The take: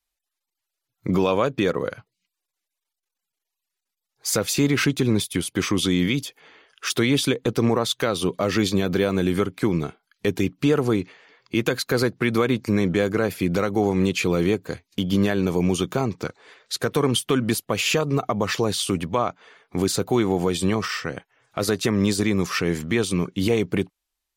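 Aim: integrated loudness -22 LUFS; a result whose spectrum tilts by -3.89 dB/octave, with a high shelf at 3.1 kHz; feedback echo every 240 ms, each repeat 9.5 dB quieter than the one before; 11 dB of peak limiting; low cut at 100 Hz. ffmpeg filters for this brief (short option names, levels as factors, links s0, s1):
-af "highpass=100,highshelf=f=3100:g=7.5,alimiter=limit=0.168:level=0:latency=1,aecho=1:1:240|480|720|960:0.335|0.111|0.0365|0.012,volume=1.58"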